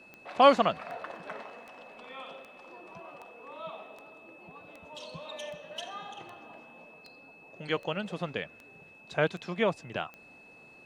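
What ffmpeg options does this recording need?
-af "adeclick=t=4,bandreject=f=2.6k:w=30"

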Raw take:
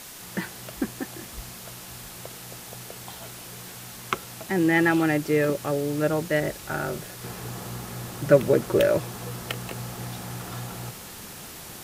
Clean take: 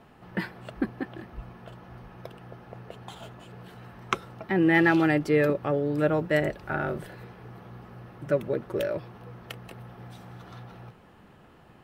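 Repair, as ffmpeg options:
-af "adeclick=t=4,afwtdn=0.0089,asetnsamples=n=441:p=0,asendcmd='7.24 volume volume -8.5dB',volume=0dB"

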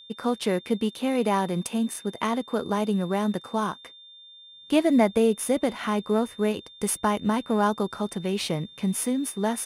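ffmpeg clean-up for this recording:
-af "bandreject=f=3.6k:w=30"

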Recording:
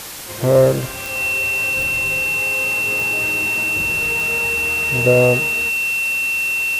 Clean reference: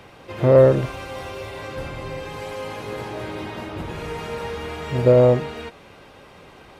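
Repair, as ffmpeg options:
-af "adeclick=t=4,bandreject=f=2.7k:w=30,afwtdn=0.028"

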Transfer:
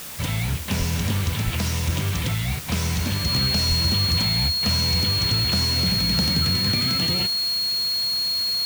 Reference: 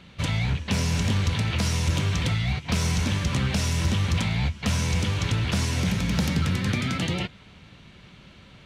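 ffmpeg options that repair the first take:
-filter_complex "[0:a]bandreject=f=4.3k:w=30,asplit=3[a][b][c];[a]afade=t=out:st=0.78:d=0.02[d];[b]highpass=f=140:w=0.5412,highpass=f=140:w=1.3066,afade=t=in:st=0.78:d=0.02,afade=t=out:st=0.9:d=0.02[e];[c]afade=t=in:st=0.9:d=0.02[f];[d][e][f]amix=inputs=3:normalize=0,asplit=3[g][h][i];[g]afade=t=out:st=1.44:d=0.02[j];[h]highpass=f=140:w=0.5412,highpass=f=140:w=1.3066,afade=t=in:st=1.44:d=0.02,afade=t=out:st=1.56:d=0.02[k];[i]afade=t=in:st=1.56:d=0.02[l];[j][k][l]amix=inputs=3:normalize=0,asplit=3[m][n][o];[m]afade=t=out:st=3.68:d=0.02[p];[n]highpass=f=140:w=0.5412,highpass=f=140:w=1.3066,afade=t=in:st=3.68:d=0.02,afade=t=out:st=3.8:d=0.02[q];[o]afade=t=in:st=3.8:d=0.02[r];[p][q][r]amix=inputs=3:normalize=0,afwtdn=0.016"

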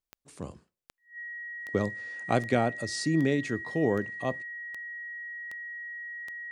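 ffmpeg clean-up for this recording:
-af "adeclick=t=4,bandreject=f=1.9k:w=30"

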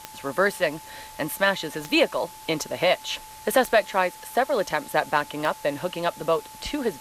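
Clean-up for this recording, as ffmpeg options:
-af "adeclick=t=4,bandreject=f=870:w=30,afwtdn=0.0056"

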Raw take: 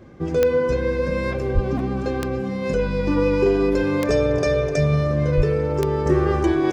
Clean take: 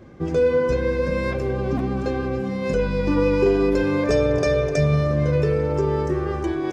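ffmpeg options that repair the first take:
-filter_complex "[0:a]adeclick=t=4,asplit=3[a][b][c];[a]afade=t=out:st=1.54:d=0.02[d];[b]highpass=f=140:w=0.5412,highpass=f=140:w=1.3066,afade=t=in:st=1.54:d=0.02,afade=t=out:st=1.66:d=0.02[e];[c]afade=t=in:st=1.66:d=0.02[f];[d][e][f]amix=inputs=3:normalize=0,asplit=3[g][h][i];[g]afade=t=out:st=5.36:d=0.02[j];[h]highpass=f=140:w=0.5412,highpass=f=140:w=1.3066,afade=t=in:st=5.36:d=0.02,afade=t=out:st=5.48:d=0.02[k];[i]afade=t=in:st=5.48:d=0.02[l];[j][k][l]amix=inputs=3:normalize=0,asetnsamples=n=441:p=0,asendcmd='6.06 volume volume -5.5dB',volume=0dB"

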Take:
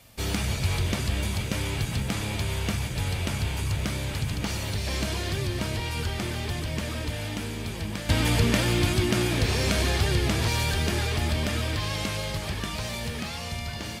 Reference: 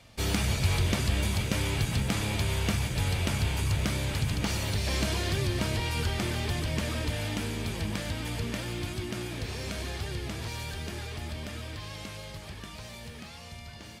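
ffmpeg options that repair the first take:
-af "agate=range=-21dB:threshold=-25dB,asetnsamples=n=441:p=0,asendcmd='8.09 volume volume -11dB',volume=0dB"

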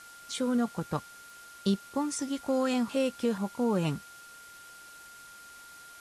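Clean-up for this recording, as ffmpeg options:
-af "adeclick=t=4,bandreject=f=1.4k:w=30,afwtdn=0.0025"

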